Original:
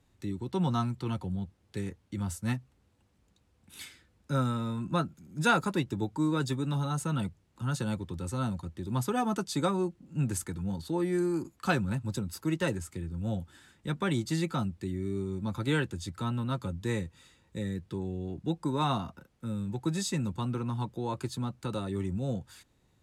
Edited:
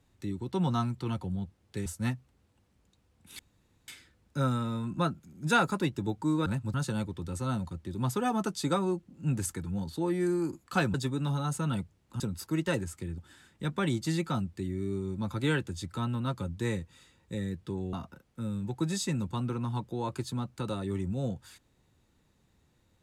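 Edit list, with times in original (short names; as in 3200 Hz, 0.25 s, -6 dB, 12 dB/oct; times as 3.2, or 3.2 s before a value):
1.86–2.29 cut
3.82 insert room tone 0.49 s
6.4–7.66 swap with 11.86–12.14
13.12–13.42 cut
18.17–18.98 cut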